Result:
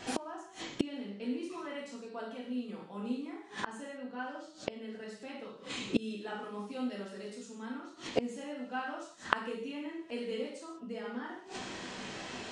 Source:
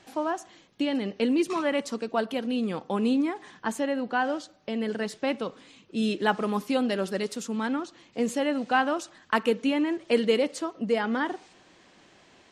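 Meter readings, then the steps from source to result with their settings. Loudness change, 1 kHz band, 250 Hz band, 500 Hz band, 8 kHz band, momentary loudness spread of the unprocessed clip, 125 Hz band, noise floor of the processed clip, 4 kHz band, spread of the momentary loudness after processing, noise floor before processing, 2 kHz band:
-11.5 dB, -11.0 dB, -11.5 dB, -12.5 dB, -7.5 dB, 8 LU, -9.0 dB, -53 dBFS, -8.0 dB, 9 LU, -58 dBFS, -10.0 dB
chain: downsampling 22050 Hz; non-linear reverb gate 0.22 s falling, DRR -6 dB; flipped gate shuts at -23 dBFS, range -28 dB; gain +7 dB

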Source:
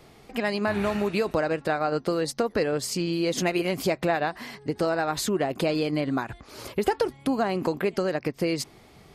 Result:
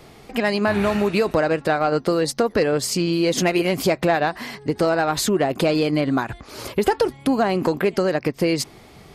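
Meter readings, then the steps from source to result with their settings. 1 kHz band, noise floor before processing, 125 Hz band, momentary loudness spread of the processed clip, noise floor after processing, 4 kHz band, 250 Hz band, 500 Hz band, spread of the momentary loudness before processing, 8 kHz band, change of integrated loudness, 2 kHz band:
+5.5 dB, -53 dBFS, +6.0 dB, 5 LU, -47 dBFS, +6.0 dB, +6.0 dB, +6.0 dB, 6 LU, +6.5 dB, +6.0 dB, +5.5 dB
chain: soft clip -13.5 dBFS, distortion -25 dB; gain +6.5 dB

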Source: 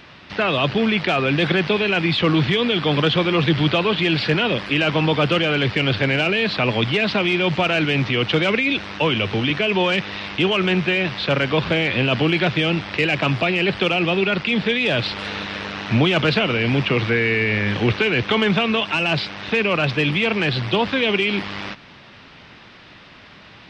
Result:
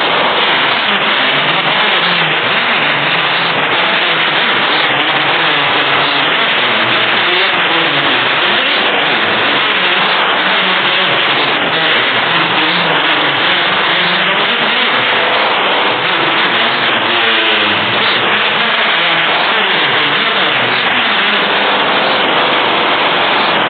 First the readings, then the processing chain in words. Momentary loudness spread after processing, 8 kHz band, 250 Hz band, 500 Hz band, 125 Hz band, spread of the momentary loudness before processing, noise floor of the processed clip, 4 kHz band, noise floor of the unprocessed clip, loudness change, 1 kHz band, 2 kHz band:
1 LU, n/a, -1.0 dB, +4.0 dB, -5.5 dB, 3 LU, -14 dBFS, +13.0 dB, -45 dBFS, +9.0 dB, +14.5 dB, +11.5 dB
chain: infinite clipping; Bessel high-pass 380 Hz, order 2; tilt shelf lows -8 dB, about 810 Hz; spectral gate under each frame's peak -10 dB weak; negative-ratio compressor -20 dBFS; downsampling 8000 Hz; flange 0.84 Hz, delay 9.5 ms, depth 5.5 ms, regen -86%; echo 0.303 s -13 dB; spring tank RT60 1.4 s, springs 42/48 ms, chirp 75 ms, DRR 1 dB; maximiser +21 dB; record warp 45 rpm, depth 100 cents; gain -1 dB

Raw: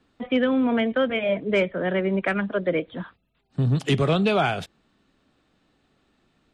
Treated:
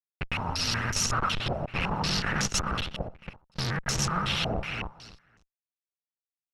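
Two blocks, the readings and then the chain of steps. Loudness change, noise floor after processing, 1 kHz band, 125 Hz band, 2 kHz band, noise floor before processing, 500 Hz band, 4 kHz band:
-5.5 dB, under -85 dBFS, -1.5 dB, -5.0 dB, -3.0 dB, -69 dBFS, -14.5 dB, +4.0 dB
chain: FFT order left unsorted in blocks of 128 samples; fixed phaser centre 1300 Hz, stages 4; Schmitt trigger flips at -24 dBFS; vibrato 14 Hz 94 cents; feedback echo 0.277 s, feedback 19%, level -5.5 dB; stepped low-pass 5.4 Hz 670–6400 Hz; gain -3.5 dB

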